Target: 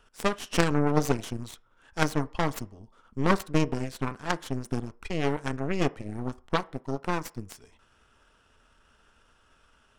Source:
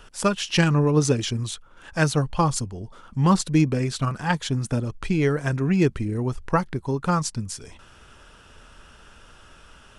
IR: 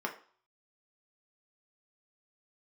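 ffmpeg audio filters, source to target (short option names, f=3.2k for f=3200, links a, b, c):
-filter_complex "[0:a]asettb=1/sr,asplit=3[a][b][c];[a]atrim=end=5.624[d];[b]atrim=start=5.62:end=7.39,asetpts=PTS-STARTPTS,afade=t=in:d=0.004:c=qsin,afade=t=out:st=1.766:d=0.004:c=qsin,aeval=exprs='sgn(val(0))*max(abs(val(0))-0.00473,0)':c=same[e];[c]atrim=start=7.386[f];[d][e]acrossfade=d=0.004:c1=hsin:c2=qsin[g];[g][f]acrossfade=d=0.004:c1=qsin:c2=hsin,aeval=exprs='0.531*(cos(1*acos(clip(val(0)/0.531,-1,1)))-cos(1*PI/2))+0.168*(cos(3*acos(clip(val(0)/0.531,-1,1)))-cos(3*PI/2))+0.0266*(cos(4*acos(clip(val(0)/0.531,-1,1)))-cos(4*PI/2))+0.0119*(cos(5*acos(clip(val(0)/0.531,-1,1)))-cos(5*PI/2))+0.0211*(cos(8*acos(clip(val(0)/0.531,-1,1)))-cos(8*PI/2))':c=same,asplit=2[h][i];[1:a]atrim=start_sample=2205,lowpass=8k[j];[i][j]afir=irnorm=-1:irlink=0,volume=-14.5dB[k];[h][k]amix=inputs=2:normalize=0,volume=1.5dB"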